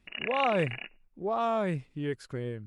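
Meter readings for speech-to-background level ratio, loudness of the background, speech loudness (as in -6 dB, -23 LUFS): 4.0 dB, -35.5 LUFS, -31.5 LUFS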